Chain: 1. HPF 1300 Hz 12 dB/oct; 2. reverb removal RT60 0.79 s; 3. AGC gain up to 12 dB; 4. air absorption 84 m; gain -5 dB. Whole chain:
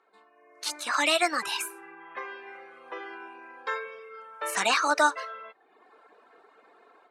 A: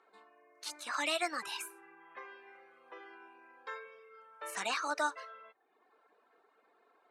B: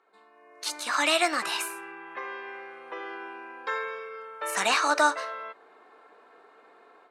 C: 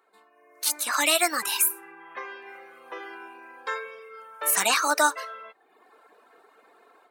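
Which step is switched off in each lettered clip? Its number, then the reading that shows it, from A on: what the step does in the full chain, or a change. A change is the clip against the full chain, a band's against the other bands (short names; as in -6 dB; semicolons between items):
3, momentary loudness spread change +1 LU; 2, momentary loudness spread change -3 LU; 4, 8 kHz band +9.0 dB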